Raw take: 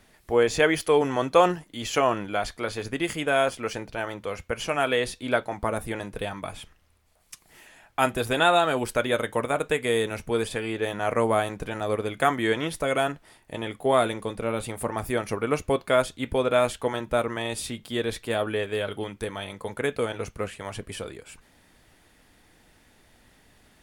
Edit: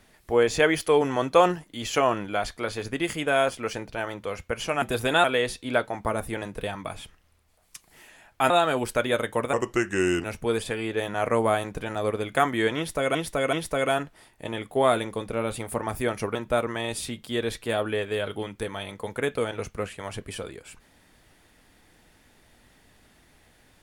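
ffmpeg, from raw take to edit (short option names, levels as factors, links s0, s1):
-filter_complex "[0:a]asplit=9[s0][s1][s2][s3][s4][s5][s6][s7][s8];[s0]atrim=end=4.822[s9];[s1]atrim=start=8.078:end=8.502[s10];[s2]atrim=start=4.818:end=8.082[s11];[s3]atrim=start=8.498:end=9.534[s12];[s4]atrim=start=9.53:end=10.09,asetpts=PTS-STARTPTS,asetrate=34839,aresample=44100[s13];[s5]atrim=start=10.086:end=13.002[s14];[s6]atrim=start=12.618:end=13.002[s15];[s7]atrim=start=12.618:end=15.442[s16];[s8]atrim=start=16.958[s17];[s9][s10]acrossfade=d=0.004:c1=hsin:c2=hsin[s18];[s18][s11]acrossfade=d=0.004:c1=hsin:c2=hsin[s19];[s19][s12]acrossfade=d=0.004:c1=hsin:c2=hsin[s20];[s20][s13]acrossfade=d=0.004:c1=hsin:c2=hsin[s21];[s21][s14]acrossfade=d=0.004:c1=hsin:c2=hsin[s22];[s22][s15]acrossfade=d=0.004:c1=hsin:c2=hsin[s23];[s23][s16]acrossfade=d=0.004:c1=hsin:c2=hsin[s24];[s24][s17]acrossfade=d=0.004:c1=hsin:c2=hsin"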